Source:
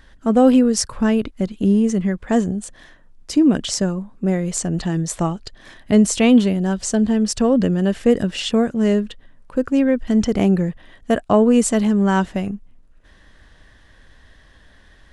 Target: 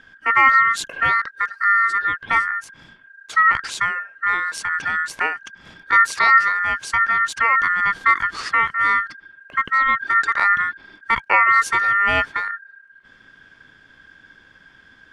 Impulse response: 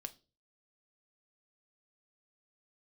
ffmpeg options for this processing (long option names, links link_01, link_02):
-af "aeval=exprs='val(0)*sin(2*PI*1600*n/s)':channel_layout=same,aemphasis=mode=reproduction:type=50kf,volume=2.5dB"